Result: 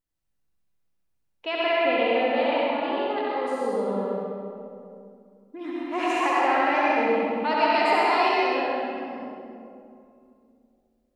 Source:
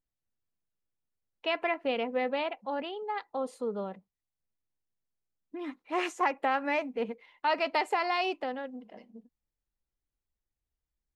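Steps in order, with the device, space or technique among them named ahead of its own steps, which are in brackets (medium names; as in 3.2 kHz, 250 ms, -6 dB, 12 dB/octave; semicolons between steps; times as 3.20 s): tunnel (flutter echo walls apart 11.3 m, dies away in 0.91 s; reverberation RT60 2.5 s, pre-delay 80 ms, DRR -5 dB)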